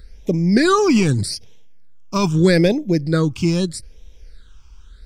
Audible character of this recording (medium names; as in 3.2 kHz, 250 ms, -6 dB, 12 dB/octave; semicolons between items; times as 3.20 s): phasing stages 8, 0.8 Hz, lowest notch 530–1400 Hz